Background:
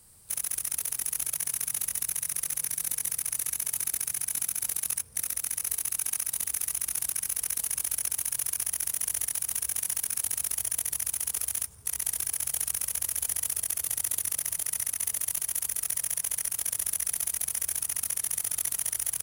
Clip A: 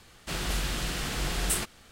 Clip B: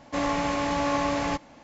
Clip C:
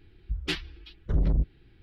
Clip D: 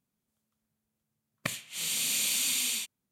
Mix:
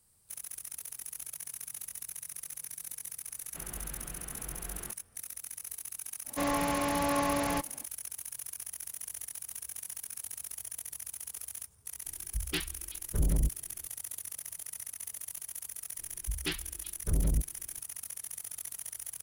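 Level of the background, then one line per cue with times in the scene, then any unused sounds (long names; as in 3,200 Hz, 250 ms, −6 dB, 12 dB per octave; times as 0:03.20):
background −11.5 dB
0:03.27: mix in A −13 dB + low-pass filter 1,900 Hz
0:06.24: mix in B −4 dB, fades 0.05 s
0:12.05: mix in C −4 dB
0:15.98: mix in C −4.5 dB
not used: D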